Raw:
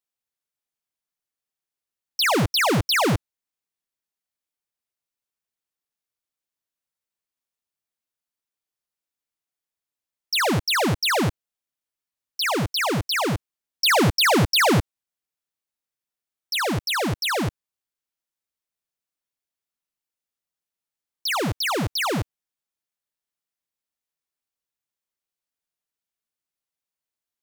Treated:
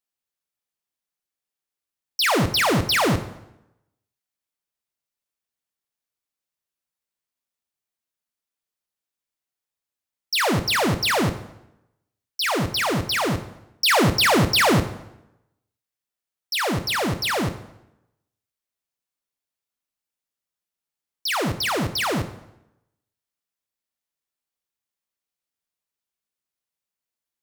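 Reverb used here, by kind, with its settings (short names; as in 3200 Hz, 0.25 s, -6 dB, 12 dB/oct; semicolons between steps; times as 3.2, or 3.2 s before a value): plate-style reverb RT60 0.87 s, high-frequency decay 0.8×, DRR 9 dB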